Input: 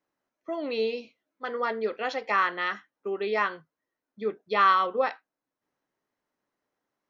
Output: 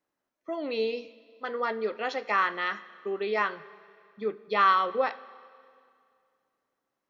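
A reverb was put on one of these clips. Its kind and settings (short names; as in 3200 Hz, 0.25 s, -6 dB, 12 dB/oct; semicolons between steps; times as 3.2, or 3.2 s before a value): Schroeder reverb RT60 2.3 s, combs from 31 ms, DRR 17.5 dB; gain -1 dB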